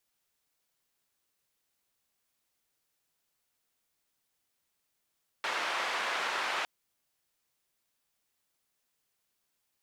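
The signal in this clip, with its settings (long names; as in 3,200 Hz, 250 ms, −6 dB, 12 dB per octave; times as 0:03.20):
band-limited noise 630–2,100 Hz, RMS −33 dBFS 1.21 s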